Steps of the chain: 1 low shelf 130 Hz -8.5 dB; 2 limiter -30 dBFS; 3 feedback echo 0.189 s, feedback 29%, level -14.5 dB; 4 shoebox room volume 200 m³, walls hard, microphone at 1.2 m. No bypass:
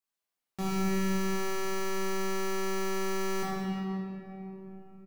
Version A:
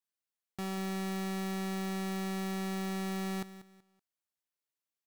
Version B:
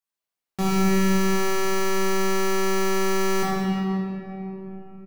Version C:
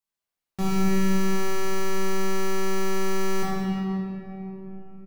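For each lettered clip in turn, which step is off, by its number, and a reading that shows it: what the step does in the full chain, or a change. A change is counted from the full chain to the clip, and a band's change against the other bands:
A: 4, echo-to-direct 8.5 dB to -14.0 dB; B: 2, mean gain reduction 9.0 dB; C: 1, 125 Hz band +3.0 dB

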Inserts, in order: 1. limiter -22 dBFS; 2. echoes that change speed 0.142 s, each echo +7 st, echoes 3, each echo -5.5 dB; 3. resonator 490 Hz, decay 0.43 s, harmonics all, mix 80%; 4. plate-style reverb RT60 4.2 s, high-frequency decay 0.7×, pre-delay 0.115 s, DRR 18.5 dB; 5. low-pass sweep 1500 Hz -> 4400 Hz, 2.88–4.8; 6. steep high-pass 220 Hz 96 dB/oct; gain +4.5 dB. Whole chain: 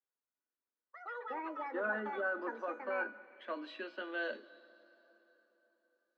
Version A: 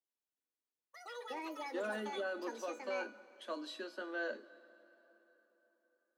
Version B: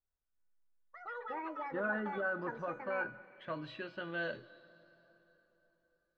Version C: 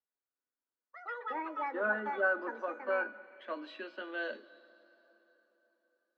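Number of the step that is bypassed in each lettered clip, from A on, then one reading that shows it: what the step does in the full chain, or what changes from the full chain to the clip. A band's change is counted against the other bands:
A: 5, 4 kHz band +6.5 dB; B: 6, 250 Hz band +2.0 dB; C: 1, crest factor change +2.5 dB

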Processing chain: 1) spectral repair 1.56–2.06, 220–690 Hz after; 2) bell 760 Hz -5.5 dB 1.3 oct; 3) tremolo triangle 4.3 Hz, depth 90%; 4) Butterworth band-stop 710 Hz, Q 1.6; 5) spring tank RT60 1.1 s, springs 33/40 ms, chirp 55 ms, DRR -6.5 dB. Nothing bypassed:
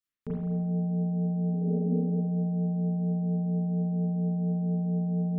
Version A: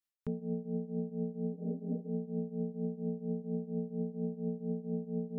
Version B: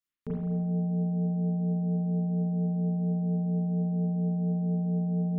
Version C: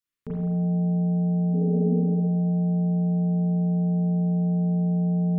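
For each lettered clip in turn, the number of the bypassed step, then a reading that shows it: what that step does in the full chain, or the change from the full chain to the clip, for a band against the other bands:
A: 5, loudness change -9.0 LU; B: 1, crest factor change -3.0 dB; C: 3, loudness change +5.0 LU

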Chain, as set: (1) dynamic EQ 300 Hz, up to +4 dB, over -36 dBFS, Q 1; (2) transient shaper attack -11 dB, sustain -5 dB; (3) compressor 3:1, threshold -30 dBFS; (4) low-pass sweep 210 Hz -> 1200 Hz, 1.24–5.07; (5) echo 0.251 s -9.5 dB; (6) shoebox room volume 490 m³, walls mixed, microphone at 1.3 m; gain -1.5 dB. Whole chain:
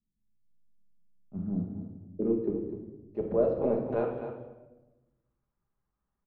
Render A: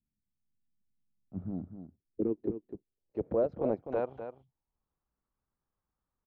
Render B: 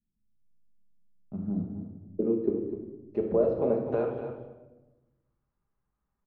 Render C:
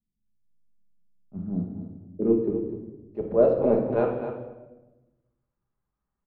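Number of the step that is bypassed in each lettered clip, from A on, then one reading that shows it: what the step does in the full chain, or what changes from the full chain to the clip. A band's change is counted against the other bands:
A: 6, 125 Hz band -2.5 dB; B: 2, momentary loudness spread change -2 LU; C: 3, mean gain reduction 4.0 dB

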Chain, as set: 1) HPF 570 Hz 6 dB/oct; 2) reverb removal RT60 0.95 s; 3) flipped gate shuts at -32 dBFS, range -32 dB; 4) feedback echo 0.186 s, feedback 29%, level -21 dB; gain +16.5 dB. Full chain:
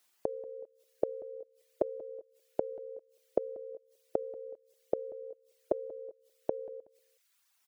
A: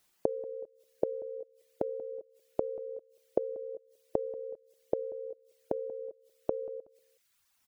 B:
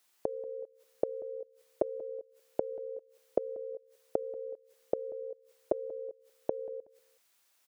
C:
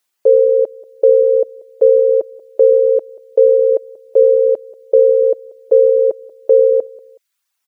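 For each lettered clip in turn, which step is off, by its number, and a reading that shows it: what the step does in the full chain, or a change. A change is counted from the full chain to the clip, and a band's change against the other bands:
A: 1, 125 Hz band +3.0 dB; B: 2, momentary loudness spread change -3 LU; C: 3, momentary loudness spread change -4 LU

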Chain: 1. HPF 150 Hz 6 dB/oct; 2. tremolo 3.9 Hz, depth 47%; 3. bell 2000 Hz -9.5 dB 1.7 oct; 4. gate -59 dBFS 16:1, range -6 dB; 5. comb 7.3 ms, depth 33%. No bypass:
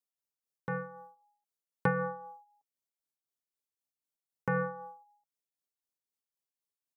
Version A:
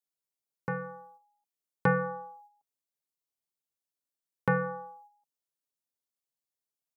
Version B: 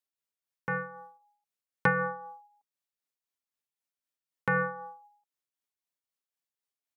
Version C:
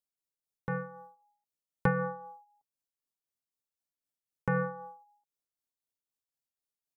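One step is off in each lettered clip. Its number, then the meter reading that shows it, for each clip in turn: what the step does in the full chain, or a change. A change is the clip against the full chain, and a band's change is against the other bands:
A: 2, momentary loudness spread change +2 LU; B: 3, 2 kHz band +7.5 dB; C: 1, 125 Hz band +3.0 dB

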